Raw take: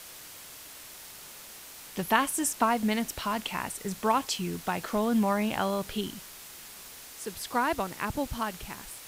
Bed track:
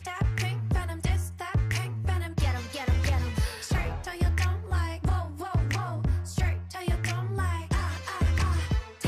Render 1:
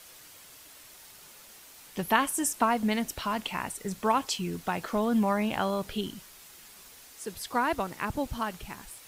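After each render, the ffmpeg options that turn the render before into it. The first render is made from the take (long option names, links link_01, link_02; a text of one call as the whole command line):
ffmpeg -i in.wav -af "afftdn=noise_reduction=6:noise_floor=-47" out.wav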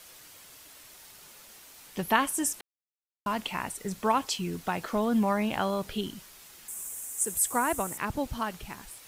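ffmpeg -i in.wav -filter_complex "[0:a]asettb=1/sr,asplit=3[link_01][link_02][link_03];[link_01]atrim=end=6.684[link_04];[link_02]atrim=start=6.68:end=7.98,asetpts=PTS-STARTPTS,afade=type=in:duration=0.004:curve=qsin,afade=type=out:start_time=1.296:duration=0.004:curve=qsin,highshelf=frequency=6100:width_type=q:width=3:gain=11[link_05];[link_03]atrim=start=7.976[link_06];[link_04][link_05]acrossfade=duration=0.004:curve1=hsin:curve2=qsin[link_07];[link_07][link_06]acrossfade=duration=0.004:curve1=qsin:curve2=hsin,asplit=3[link_08][link_09][link_10];[link_08]atrim=end=2.61,asetpts=PTS-STARTPTS,afade=type=out:start_time=2.606:duration=0.004:curve=hsin[link_11];[link_09]atrim=start=2.61:end=3.26,asetpts=PTS-STARTPTS,volume=0[link_12];[link_10]atrim=start=3.26,asetpts=PTS-STARTPTS,afade=type=in:duration=0.004:curve=hsin[link_13];[link_11][link_12][link_13]concat=n=3:v=0:a=1" out.wav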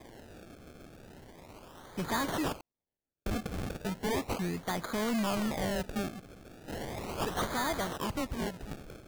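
ffmpeg -i in.wav -af "acrusher=samples=31:mix=1:aa=0.000001:lfo=1:lforange=31:lforate=0.36,volume=28.5dB,asoftclip=hard,volume=-28.5dB" out.wav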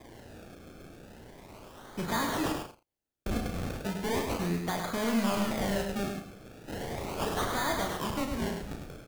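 ffmpeg -i in.wav -filter_complex "[0:a]asplit=2[link_01][link_02];[link_02]adelay=35,volume=-6dB[link_03];[link_01][link_03]amix=inputs=2:normalize=0,asplit=2[link_04][link_05];[link_05]aecho=0:1:103|184:0.531|0.126[link_06];[link_04][link_06]amix=inputs=2:normalize=0" out.wav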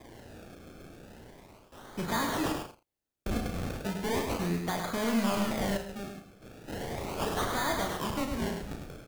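ffmpeg -i in.wav -filter_complex "[0:a]asplit=4[link_01][link_02][link_03][link_04];[link_01]atrim=end=1.72,asetpts=PTS-STARTPTS,afade=type=out:start_time=1.1:duration=0.62:curve=qsin:silence=0.188365[link_05];[link_02]atrim=start=1.72:end=5.772,asetpts=PTS-STARTPTS,afade=type=in:duration=0.004:curve=hsin:silence=0.188365[link_06];[link_03]atrim=start=5.768:end=6.422,asetpts=PTS-STARTPTS,volume=-7dB[link_07];[link_04]atrim=start=6.418[link_08];[link_05][link_06]concat=n=2:v=0:a=1[link_09];[link_09][link_07]acrossfade=duration=0.004:curve1=hsin:curve2=hsin[link_10];[link_10][link_08]acrossfade=duration=0.004:curve1=hsin:curve2=hsin" out.wav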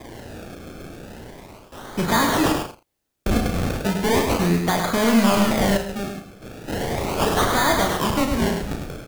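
ffmpeg -i in.wav -af "volume=11.5dB" out.wav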